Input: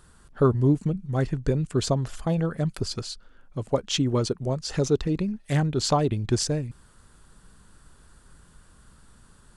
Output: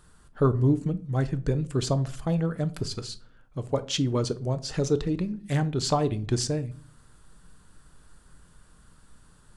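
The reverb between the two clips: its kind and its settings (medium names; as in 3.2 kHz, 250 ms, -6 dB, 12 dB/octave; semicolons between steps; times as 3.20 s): simulated room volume 370 m³, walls furnished, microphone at 0.48 m; trim -2.5 dB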